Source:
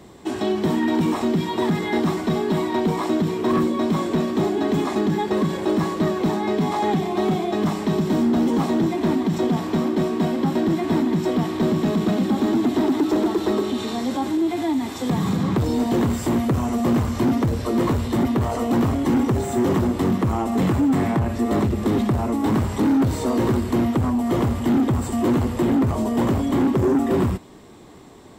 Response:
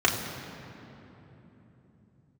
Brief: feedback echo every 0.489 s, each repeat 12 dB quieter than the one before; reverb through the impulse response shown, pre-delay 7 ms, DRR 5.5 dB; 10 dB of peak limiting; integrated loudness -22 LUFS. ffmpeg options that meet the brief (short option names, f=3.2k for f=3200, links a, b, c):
-filter_complex "[0:a]alimiter=limit=-22.5dB:level=0:latency=1,aecho=1:1:489|978|1467:0.251|0.0628|0.0157,asplit=2[a][b];[1:a]atrim=start_sample=2205,adelay=7[c];[b][c]afir=irnorm=-1:irlink=0,volume=-21dB[d];[a][d]amix=inputs=2:normalize=0,volume=5.5dB"